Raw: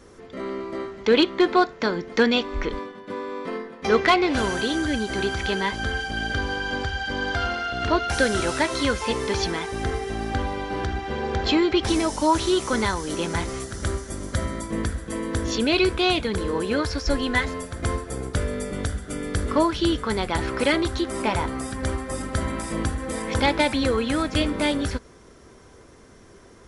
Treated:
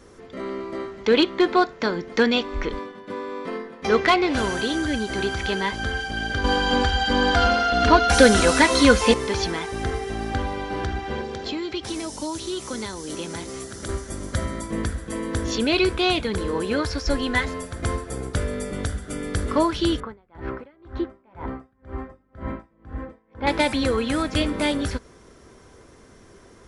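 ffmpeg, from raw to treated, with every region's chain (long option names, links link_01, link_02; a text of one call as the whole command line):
ffmpeg -i in.wav -filter_complex "[0:a]asettb=1/sr,asplit=3[link_01][link_02][link_03];[link_01]atrim=end=6.444[link_04];[link_02]atrim=start=6.44:end=9.14,asetpts=PTS-STARTPTS,afade=type=in:duration=0.004:curve=qsin,afade=type=out:start_time=2.696:duration=0.004:curve=qsin,acontrast=58,aecho=1:1:4.1:0.62,atrim=end_sample=119070[link_05];[link_03]atrim=start=9.136[link_06];[link_04][link_05]acrossfade=duration=0.004:curve1=hsin:curve2=qsin[link_07];[link_07][link_06]acrossfade=duration=0.004:curve1=qsin:curve2=hsin,asettb=1/sr,asplit=3[link_08][link_09][link_10];[link_08]atrim=end=11.214[link_11];[link_09]atrim=start=11.21:end=13.89,asetpts=PTS-STARTPTS,afade=type=in:duration=0.004:curve=qsin,afade=type=out:start_time=2.676:duration=0.004:curve=qsin,highpass=58,acrossover=split=190|520|3200[link_12][link_13][link_14][link_15];[link_12]acompressor=threshold=-44dB:ratio=3[link_16];[link_13]acompressor=threshold=-33dB:ratio=3[link_17];[link_14]acompressor=threshold=-41dB:ratio=3[link_18];[link_15]acompressor=threshold=-36dB:ratio=3[link_19];[link_16][link_17][link_18][link_19]amix=inputs=4:normalize=0[link_20];[link_10]atrim=start=13.886[link_21];[link_11][link_20]acrossfade=duration=0.004:curve1=hsin:curve2=qsin[link_22];[link_22][link_21]acrossfade=duration=0.004:curve1=qsin:curve2=hsin,asettb=1/sr,asplit=3[link_23][link_24][link_25];[link_23]atrim=end=20.004[link_26];[link_24]atrim=start=20:end=23.47,asetpts=PTS-STARTPTS,afade=type=in:duration=0.004:curve=qsin,afade=type=out:start_time=3.466:duration=0.004:curve=qsin,lowpass=1600,aeval=exprs='val(0)*pow(10,-35*(0.5-0.5*cos(2*PI*2*n/s))/20)':channel_layout=same[link_27];[link_25]atrim=start=23.466[link_28];[link_26][link_27]acrossfade=duration=0.004:curve1=hsin:curve2=qsin[link_29];[link_29][link_28]acrossfade=duration=0.004:curve1=qsin:curve2=hsin" out.wav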